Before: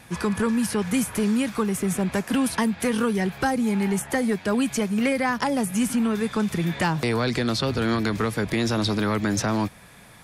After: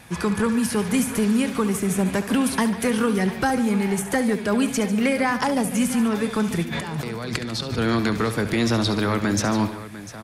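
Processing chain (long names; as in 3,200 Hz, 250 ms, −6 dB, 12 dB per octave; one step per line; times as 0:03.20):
0:06.63–0:07.78: compressor whose output falls as the input rises −31 dBFS, ratio −1
multi-tap delay 69/146/699 ms −12/−14/−15 dB
level +1.5 dB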